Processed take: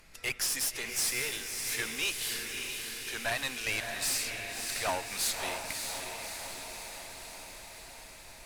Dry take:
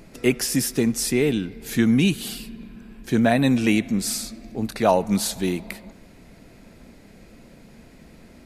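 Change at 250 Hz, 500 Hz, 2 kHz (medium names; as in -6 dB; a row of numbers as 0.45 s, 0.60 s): -28.0 dB, -16.5 dB, -3.0 dB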